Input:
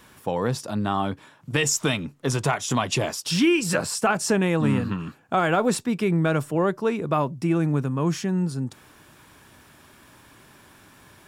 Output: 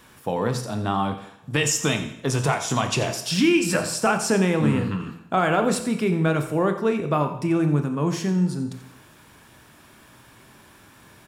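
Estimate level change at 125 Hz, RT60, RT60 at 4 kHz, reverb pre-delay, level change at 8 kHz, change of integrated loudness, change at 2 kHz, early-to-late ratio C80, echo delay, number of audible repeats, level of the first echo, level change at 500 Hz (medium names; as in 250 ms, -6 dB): +1.0 dB, 0.75 s, 0.75 s, 23 ms, +0.5 dB, +1.0 dB, +0.5 dB, 11.0 dB, 87 ms, 1, -14.0 dB, +1.0 dB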